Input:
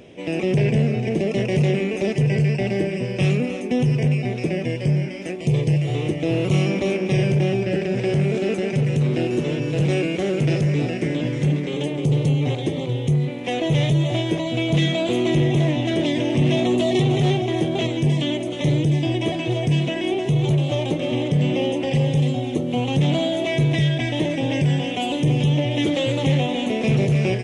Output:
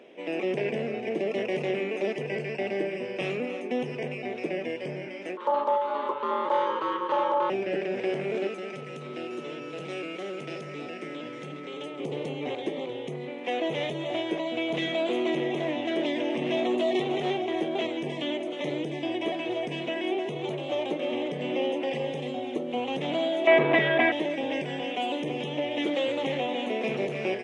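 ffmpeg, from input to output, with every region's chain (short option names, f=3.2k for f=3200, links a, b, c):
-filter_complex "[0:a]asettb=1/sr,asplit=3[a][b][c];[a]atrim=end=5.374[d];[b]atrim=start=5.37:end=7.5,asetpts=PTS-STARTPTS,afade=t=in:d=0.004:c=qsin,afade=t=out:st=2.126:d=0.004:c=qsin,equalizer=f=7.7k:w=0.85:g=-11.5,aeval=exprs='val(0)*sin(2*PI*720*n/s)':c=same[e];[c]atrim=start=7.496[f];[d][e]acrossfade=d=0.004:c1=hsin:c2=qsin[g];[g][f]acrossfade=d=0.004:c1=qsin:c2=hsin,asettb=1/sr,asplit=3[h][i][j];[h]atrim=end=8.474[k];[i]atrim=start=8.47:end=12,asetpts=PTS-STARTPTS,afade=t=in:d=0.004:c=qsin,afade=t=out:st=3.526:d=0.004:c=qsin,acrossover=split=140|3000[l][m][n];[m]acompressor=threshold=-40dB:ratio=1.5:attack=3.2:release=140:knee=2.83:detection=peak[o];[l][o][n]amix=inputs=3:normalize=0,aeval=exprs='val(0)+0.00708*sin(2*PI*1300*n/s)':c=same[p];[j]atrim=start=11.996[q];[k][p]acrossfade=d=0.004:c1=hsin:c2=qsin[r];[r][q]acrossfade=d=0.004:c1=qsin:c2=hsin,asettb=1/sr,asplit=3[s][t][u];[s]atrim=end=23.474[v];[t]atrim=start=23.47:end=24.12,asetpts=PTS-STARTPTS,afade=t=in:d=0.004:c=qsin,afade=t=out:st=0.646:d=0.004:c=qsin,highpass=130,lowpass=2.5k,acontrast=89,equalizer=f=1.2k:t=o:w=1.8:g=8.5[w];[u]atrim=start=24.116[x];[v][w]acrossfade=d=0.004:c1=hsin:c2=qsin[y];[y][x]acrossfade=d=0.004:c1=qsin:c2=hsin,highpass=f=180:w=0.5412,highpass=f=180:w=1.3066,bass=f=250:g=-14,treble=f=4k:g=-13,volume=-3dB"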